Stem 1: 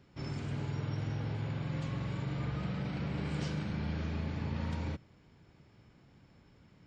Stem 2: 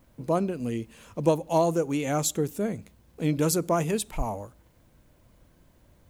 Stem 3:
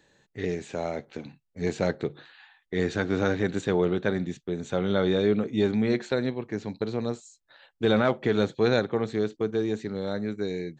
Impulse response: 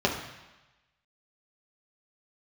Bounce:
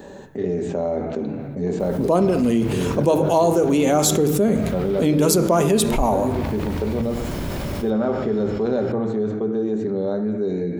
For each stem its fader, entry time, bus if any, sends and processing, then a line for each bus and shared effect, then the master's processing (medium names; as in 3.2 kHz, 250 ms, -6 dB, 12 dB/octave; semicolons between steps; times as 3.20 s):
-4.0 dB, 2.05 s, no send, compressor with a negative ratio -41 dBFS, ratio -0.5
+1.0 dB, 1.80 s, send -18.5 dB, none
-18.5 dB, 0.00 s, send -13 dB, peaking EQ 3.8 kHz -13 dB 1.9 oct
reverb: on, RT60 1.1 s, pre-delay 3 ms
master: level flattener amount 70%